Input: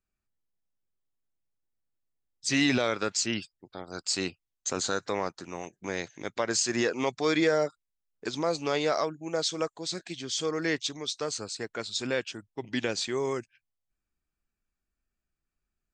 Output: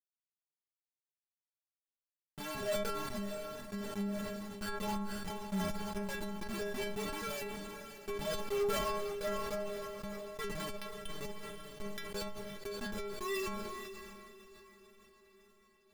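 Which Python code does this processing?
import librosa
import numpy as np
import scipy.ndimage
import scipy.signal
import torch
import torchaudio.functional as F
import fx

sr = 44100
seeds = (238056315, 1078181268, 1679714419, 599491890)

y = fx.bin_expand(x, sr, power=3.0)
y = fx.doppler_pass(y, sr, speed_mps=20, closest_m=7.0, pass_at_s=5.43)
y = fx.recorder_agc(y, sr, target_db=-30.5, rise_db_per_s=35.0, max_gain_db=30)
y = scipy.signal.sosfilt(scipy.signal.butter(2, 1800.0, 'lowpass', fs=sr, output='sos'), y)
y = fx.leveller(y, sr, passes=1)
y = fx.schmitt(y, sr, flips_db=-37.0)
y = fx.stiff_resonator(y, sr, f0_hz=200.0, decay_s=0.39, stiffness=0.008)
y = fx.cheby_harmonics(y, sr, harmonics=(5,), levels_db=(-20,), full_scale_db=-42.5)
y = fx.echo_diffused(y, sr, ms=571, feedback_pct=55, wet_db=-14)
y = fx.sustainer(y, sr, db_per_s=21.0)
y = y * librosa.db_to_amplitude(17.5)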